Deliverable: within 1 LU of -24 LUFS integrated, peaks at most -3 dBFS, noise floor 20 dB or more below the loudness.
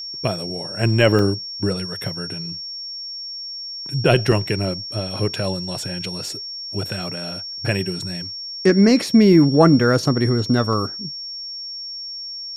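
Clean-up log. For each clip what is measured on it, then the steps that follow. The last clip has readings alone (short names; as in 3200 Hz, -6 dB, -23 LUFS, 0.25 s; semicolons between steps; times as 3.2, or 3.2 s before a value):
dropouts 3; longest dropout 1.5 ms; steady tone 5500 Hz; tone level -29 dBFS; loudness -20.5 LUFS; peak -1.5 dBFS; loudness target -24.0 LUFS
-> interpolate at 1.19/4.32/10.73, 1.5 ms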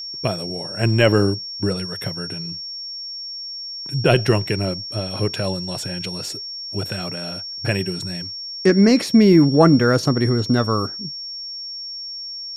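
dropouts 0; steady tone 5500 Hz; tone level -29 dBFS
-> notch 5500 Hz, Q 30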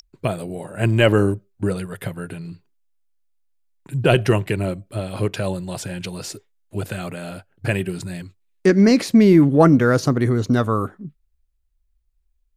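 steady tone none; loudness -19.0 LUFS; peak -1.5 dBFS; loudness target -24.0 LUFS
-> gain -5 dB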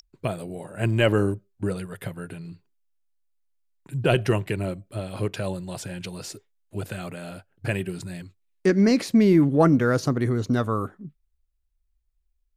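loudness -24.0 LUFS; peak -6.5 dBFS; noise floor -73 dBFS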